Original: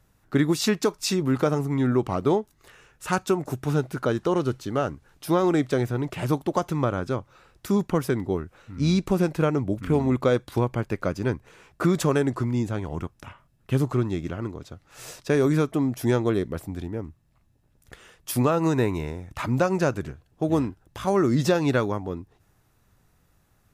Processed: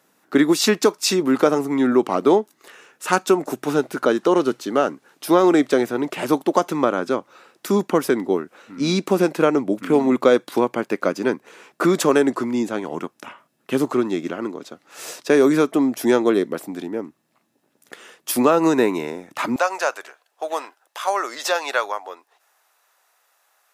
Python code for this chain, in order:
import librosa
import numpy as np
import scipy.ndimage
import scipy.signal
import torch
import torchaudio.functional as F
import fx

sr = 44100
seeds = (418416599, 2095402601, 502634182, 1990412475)

y = fx.highpass(x, sr, hz=fx.steps((0.0, 230.0), (19.56, 630.0)), slope=24)
y = F.gain(torch.from_numpy(y), 7.0).numpy()